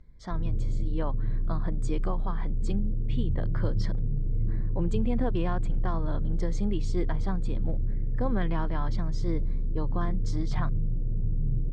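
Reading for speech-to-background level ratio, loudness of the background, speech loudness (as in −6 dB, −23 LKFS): −3.0 dB, −32.5 LKFS, −35.5 LKFS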